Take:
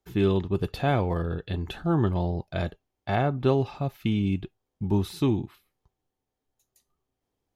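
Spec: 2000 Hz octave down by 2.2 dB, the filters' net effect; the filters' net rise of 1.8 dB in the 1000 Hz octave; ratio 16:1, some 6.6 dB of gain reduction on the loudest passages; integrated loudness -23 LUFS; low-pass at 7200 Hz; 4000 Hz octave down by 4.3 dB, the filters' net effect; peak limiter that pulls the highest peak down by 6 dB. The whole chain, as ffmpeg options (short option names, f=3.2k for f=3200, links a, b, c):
-af "lowpass=7.2k,equalizer=f=1k:t=o:g=3.5,equalizer=f=2k:t=o:g=-3.5,equalizer=f=4k:t=o:g=-4,acompressor=threshold=-24dB:ratio=16,volume=9.5dB,alimiter=limit=-11.5dB:level=0:latency=1"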